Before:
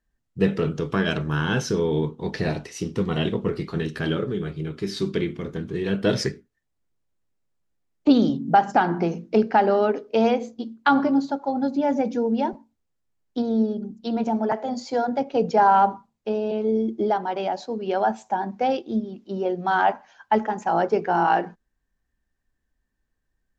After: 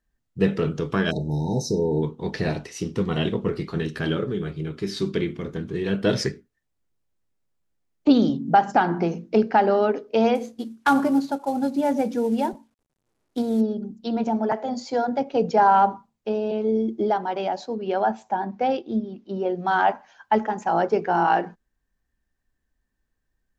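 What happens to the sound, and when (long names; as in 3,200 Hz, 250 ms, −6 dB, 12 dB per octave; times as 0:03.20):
0:01.11–0:02.03: time-frequency box erased 940–3,700 Hz
0:10.35–0:13.61: variable-slope delta modulation 64 kbit/s
0:17.75–0:19.55: high-frequency loss of the air 85 metres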